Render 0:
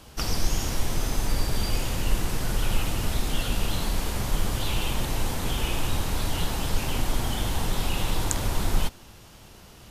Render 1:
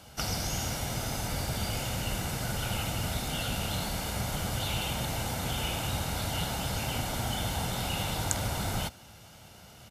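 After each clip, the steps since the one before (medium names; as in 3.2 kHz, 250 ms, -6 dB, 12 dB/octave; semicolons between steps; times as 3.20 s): high-pass 85 Hz 12 dB/octave; comb 1.4 ms, depth 45%; trim -2.5 dB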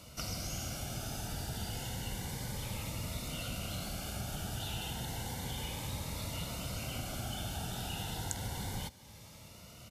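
compression 1.5:1, threshold -47 dBFS, peak gain reduction 8.5 dB; Shepard-style phaser rising 0.31 Hz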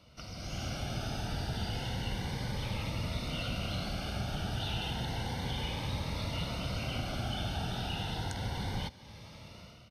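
level rider gain up to 11 dB; Savitzky-Golay filter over 15 samples; trim -6.5 dB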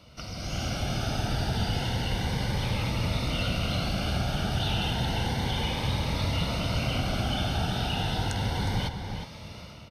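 echo from a far wall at 62 m, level -6 dB; trim +6.5 dB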